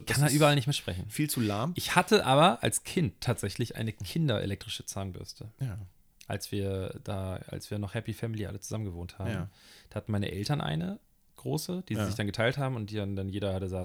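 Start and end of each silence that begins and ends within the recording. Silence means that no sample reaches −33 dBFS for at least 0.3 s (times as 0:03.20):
0:05.72–0:06.21
0:09.44–0:09.92
0:10.94–0:11.38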